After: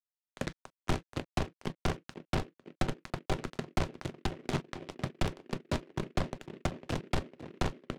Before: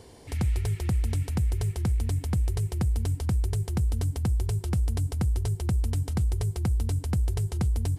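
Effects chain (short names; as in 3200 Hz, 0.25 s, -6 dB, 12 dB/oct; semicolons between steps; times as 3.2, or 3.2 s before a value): random spectral dropouts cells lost 25%; reverb removal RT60 1.6 s; notches 60/120/180 Hz; reverb removal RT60 1.6 s; dynamic EQ 290 Hz, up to +5 dB, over -41 dBFS, Q 0.72; bit-crush 4-bit; backlash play -35 dBFS; mistuned SSB -170 Hz 220–3500 Hz; narrowing echo 0.502 s, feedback 74%, band-pass 340 Hz, level -9 dB; on a send at -9 dB: reverb, pre-delay 3 ms; on the sum: noise-modulated delay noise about 1800 Hz, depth 0.083 ms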